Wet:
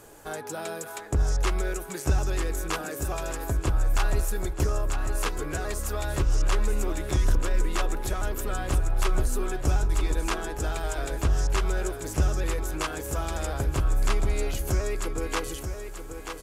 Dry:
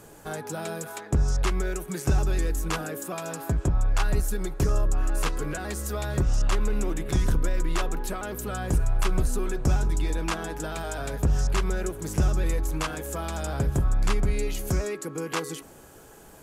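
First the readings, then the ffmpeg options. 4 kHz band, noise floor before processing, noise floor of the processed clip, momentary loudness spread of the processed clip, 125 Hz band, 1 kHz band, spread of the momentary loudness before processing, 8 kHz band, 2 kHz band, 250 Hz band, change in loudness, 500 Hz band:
+0.5 dB, -49 dBFS, -39 dBFS, 5 LU, -1.5 dB, +0.5 dB, 7 LU, +0.5 dB, +0.5 dB, -3.0 dB, -0.5 dB, 0.0 dB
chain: -filter_complex "[0:a]equalizer=f=170:w=1.6:g=-9,asplit=2[a][b];[b]aecho=0:1:934|1868|2802|3736:0.398|0.135|0.046|0.0156[c];[a][c]amix=inputs=2:normalize=0"

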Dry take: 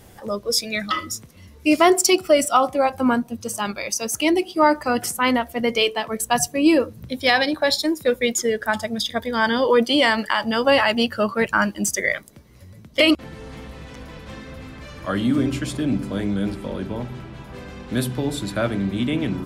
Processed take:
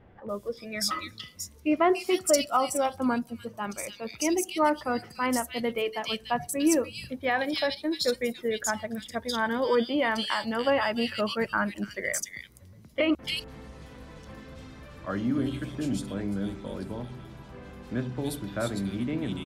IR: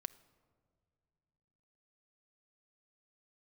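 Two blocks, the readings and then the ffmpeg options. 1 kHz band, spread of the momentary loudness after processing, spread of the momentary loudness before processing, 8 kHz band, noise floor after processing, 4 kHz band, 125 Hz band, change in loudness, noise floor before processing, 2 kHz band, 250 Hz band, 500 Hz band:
-7.5 dB, 19 LU, 20 LU, -7.5 dB, -52 dBFS, -9.5 dB, -7.5 dB, -8.0 dB, -46 dBFS, -9.0 dB, -7.5 dB, -7.5 dB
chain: -filter_complex "[0:a]acrossover=split=2600[a][b];[b]adelay=290[c];[a][c]amix=inputs=2:normalize=0,volume=-7.5dB"

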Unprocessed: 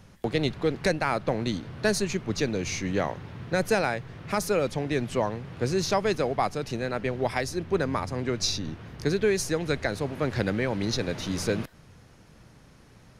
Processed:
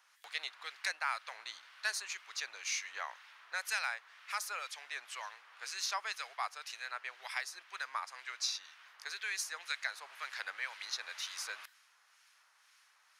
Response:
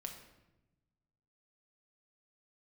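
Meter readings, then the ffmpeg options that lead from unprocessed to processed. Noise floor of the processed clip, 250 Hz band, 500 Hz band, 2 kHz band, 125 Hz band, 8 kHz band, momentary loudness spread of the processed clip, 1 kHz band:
-69 dBFS, under -40 dB, -30.5 dB, -5.0 dB, under -40 dB, -6.0 dB, 9 LU, -10.5 dB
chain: -filter_complex "[0:a]highpass=f=1.1k:w=0.5412,highpass=f=1.1k:w=1.3066,acrossover=split=1500[a][b];[a]aeval=exprs='val(0)*(1-0.5/2+0.5/2*cos(2*PI*2*n/s))':c=same[c];[b]aeval=exprs='val(0)*(1-0.5/2-0.5/2*cos(2*PI*2*n/s))':c=same[d];[c][d]amix=inputs=2:normalize=0,volume=-2.5dB"

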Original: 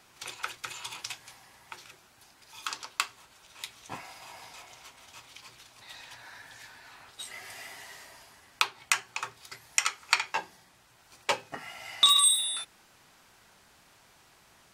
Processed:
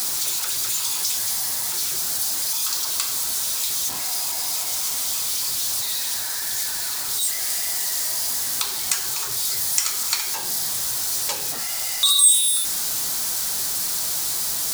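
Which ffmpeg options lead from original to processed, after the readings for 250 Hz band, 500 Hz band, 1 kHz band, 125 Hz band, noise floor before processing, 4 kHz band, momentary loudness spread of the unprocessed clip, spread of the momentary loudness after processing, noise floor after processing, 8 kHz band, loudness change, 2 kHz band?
+10.5 dB, +4.0 dB, +1.0 dB, +12.0 dB, -61 dBFS, +6.5 dB, 25 LU, 4 LU, -27 dBFS, +14.0 dB, +7.5 dB, +1.0 dB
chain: -af "aeval=exprs='val(0)+0.5*0.0708*sgn(val(0))':c=same,aexciter=amount=4.5:drive=6.6:freq=3.8k,flanger=delay=4:depth=9.1:regen=78:speed=1.8:shape=sinusoidal,volume=-4dB"

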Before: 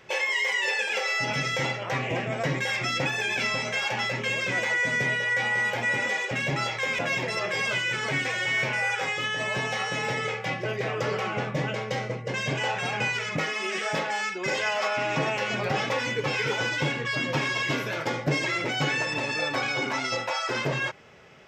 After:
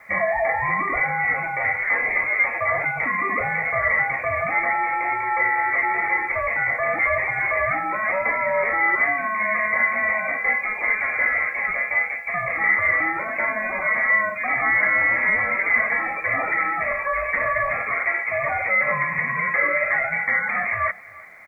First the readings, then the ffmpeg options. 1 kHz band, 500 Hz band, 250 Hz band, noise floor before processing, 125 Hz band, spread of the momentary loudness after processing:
+7.5 dB, +2.5 dB, -4.5 dB, -34 dBFS, -7.5 dB, 5 LU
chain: -filter_complex "[0:a]acrossover=split=1600[a][b];[a]alimiter=limit=-24dB:level=0:latency=1:release=32[c];[c][b]amix=inputs=2:normalize=0,highpass=f=730:t=q:w=9.1,asplit=2[d][e];[e]aecho=0:1:337|674:0.0794|0.0151[f];[d][f]amix=inputs=2:normalize=0,lowpass=f=2.4k:t=q:w=0.5098,lowpass=f=2.4k:t=q:w=0.6013,lowpass=f=2.4k:t=q:w=0.9,lowpass=f=2.4k:t=q:w=2.563,afreqshift=-2800,acrusher=bits=10:mix=0:aa=0.000001,aecho=1:1:1.7:0.31,volume=3dB"

